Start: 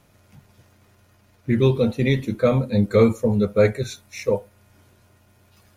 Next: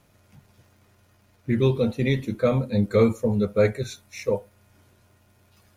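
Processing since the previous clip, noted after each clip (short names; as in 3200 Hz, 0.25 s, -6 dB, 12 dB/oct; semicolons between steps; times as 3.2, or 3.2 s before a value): crackle 63/s -52 dBFS; gain -3 dB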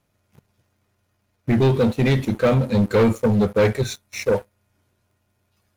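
sample leveller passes 3; gain -3.5 dB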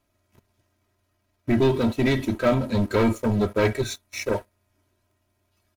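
comb 3.1 ms, depth 64%; gain -3 dB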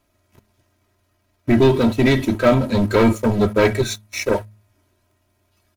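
de-hum 105.8 Hz, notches 2; gain +6 dB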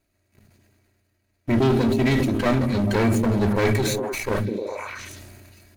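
minimum comb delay 0.45 ms; delay with a stepping band-pass 0.102 s, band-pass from 160 Hz, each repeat 0.7 oct, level -6 dB; sustainer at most 23 dB/s; gain -5.5 dB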